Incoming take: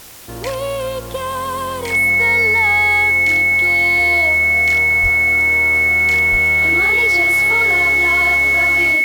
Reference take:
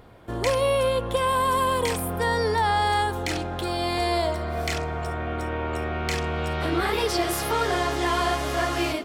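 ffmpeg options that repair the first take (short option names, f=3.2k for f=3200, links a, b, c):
-filter_complex "[0:a]bandreject=f=2.2k:w=30,asplit=3[a][b][c];[a]afade=t=out:st=5.02:d=0.02[d];[b]highpass=f=140:w=0.5412,highpass=f=140:w=1.3066,afade=t=in:st=5.02:d=0.02,afade=t=out:st=5.14:d=0.02[e];[c]afade=t=in:st=5.14:d=0.02[f];[d][e][f]amix=inputs=3:normalize=0,asplit=3[g][h][i];[g]afade=t=out:st=6.31:d=0.02[j];[h]highpass=f=140:w=0.5412,highpass=f=140:w=1.3066,afade=t=in:st=6.31:d=0.02,afade=t=out:st=6.43:d=0.02[k];[i]afade=t=in:st=6.43:d=0.02[l];[j][k][l]amix=inputs=3:normalize=0,afwtdn=0.013"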